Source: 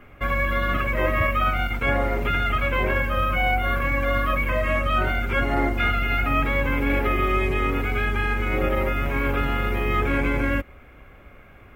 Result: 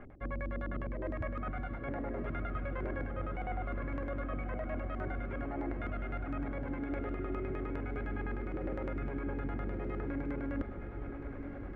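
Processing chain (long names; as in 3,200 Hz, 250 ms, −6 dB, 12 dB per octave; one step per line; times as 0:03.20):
flat-topped bell 1,800 Hz −10.5 dB
auto-filter low-pass square 9.8 Hz 310–1,700 Hz
reversed playback
downward compressor 10 to 1, threshold −35 dBFS, peak gain reduction 19.5 dB
reversed playback
feedback delay with all-pass diffusion 1,126 ms, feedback 40%, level −7.5 dB
level +1 dB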